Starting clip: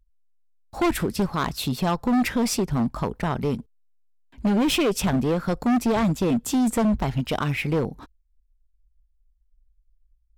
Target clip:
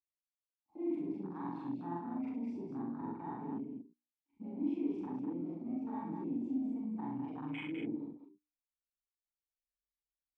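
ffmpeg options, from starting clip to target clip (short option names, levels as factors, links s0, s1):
-filter_complex "[0:a]afftfilt=real='re':imag='-im':win_size=4096:overlap=0.75,lowpass=8600,bandreject=f=60:t=h:w=6,bandreject=f=120:t=h:w=6,bandreject=f=180:t=h:w=6,bandreject=f=240:t=h:w=6,bandreject=f=300:t=h:w=6,bandreject=f=360:t=h:w=6,bandreject=f=420:t=h:w=6,bandreject=f=480:t=h:w=6,areverse,acompressor=threshold=0.02:ratio=20,areverse,asplit=3[s0][s1][s2];[s0]bandpass=f=300:t=q:w=8,volume=1[s3];[s1]bandpass=f=870:t=q:w=8,volume=0.501[s4];[s2]bandpass=f=2240:t=q:w=8,volume=0.355[s5];[s3][s4][s5]amix=inputs=3:normalize=0,afwtdn=0.00282,aecho=1:1:64|202:0.562|0.531,volume=2.51"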